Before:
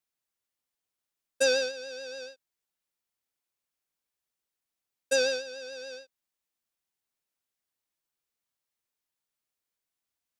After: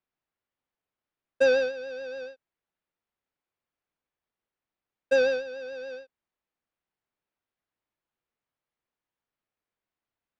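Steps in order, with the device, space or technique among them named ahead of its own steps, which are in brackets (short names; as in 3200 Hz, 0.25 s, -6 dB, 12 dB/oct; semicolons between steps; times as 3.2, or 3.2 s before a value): phone in a pocket (LPF 3200 Hz 12 dB/oct; high shelf 2400 Hz -8.5 dB); gain +5 dB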